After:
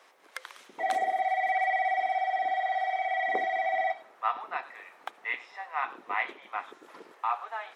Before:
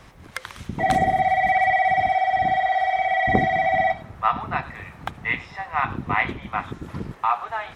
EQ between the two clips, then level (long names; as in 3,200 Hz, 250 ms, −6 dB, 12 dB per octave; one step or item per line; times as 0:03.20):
high-pass filter 400 Hz 24 dB per octave
−8.0 dB